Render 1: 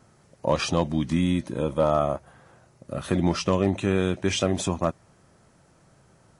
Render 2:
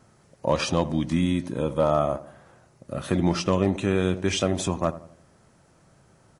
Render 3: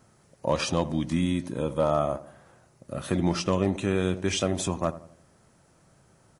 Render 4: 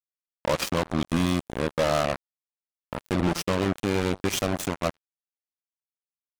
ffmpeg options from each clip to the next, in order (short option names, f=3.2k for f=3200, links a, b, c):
-filter_complex "[0:a]asplit=2[a][b];[b]adelay=86,lowpass=f=1k:p=1,volume=-14dB,asplit=2[c][d];[d]adelay=86,lowpass=f=1k:p=1,volume=0.47,asplit=2[e][f];[f]adelay=86,lowpass=f=1k:p=1,volume=0.47,asplit=2[g][h];[h]adelay=86,lowpass=f=1k:p=1,volume=0.47[i];[a][c][e][g][i]amix=inputs=5:normalize=0"
-af "highshelf=f=9.3k:g=7,volume=-2.5dB"
-af "volume=22dB,asoftclip=hard,volume=-22dB,acrusher=bits=3:mix=0:aa=0.5,volume=3.5dB"